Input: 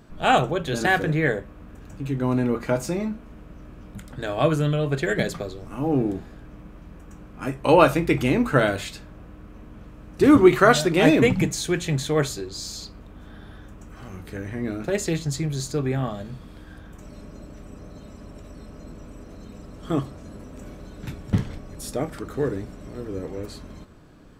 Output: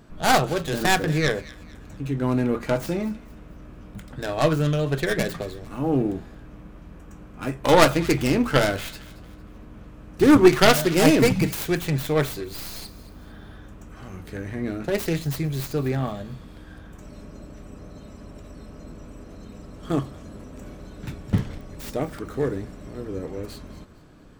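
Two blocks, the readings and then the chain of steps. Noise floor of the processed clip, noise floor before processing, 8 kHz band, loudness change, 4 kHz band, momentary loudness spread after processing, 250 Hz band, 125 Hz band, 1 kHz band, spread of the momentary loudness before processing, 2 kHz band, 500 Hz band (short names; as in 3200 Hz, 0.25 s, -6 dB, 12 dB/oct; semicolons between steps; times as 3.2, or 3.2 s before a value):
-45 dBFS, -45 dBFS, +1.0 dB, 0.0 dB, +3.0 dB, 24 LU, 0.0 dB, 0.0 dB, -0.5 dB, 24 LU, -0.5 dB, -0.5 dB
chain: tracing distortion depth 0.47 ms; thin delay 0.227 s, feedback 37%, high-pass 1700 Hz, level -16.5 dB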